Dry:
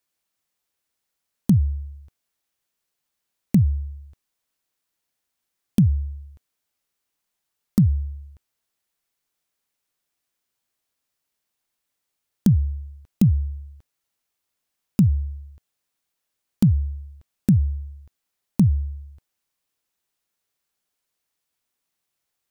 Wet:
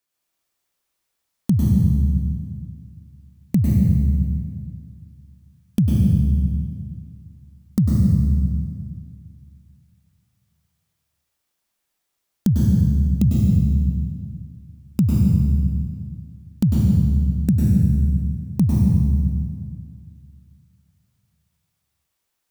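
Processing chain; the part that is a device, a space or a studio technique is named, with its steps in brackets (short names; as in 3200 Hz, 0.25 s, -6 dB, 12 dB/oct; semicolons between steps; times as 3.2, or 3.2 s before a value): stairwell (reverb RT60 1.9 s, pre-delay 96 ms, DRR -4 dB); gain -1.5 dB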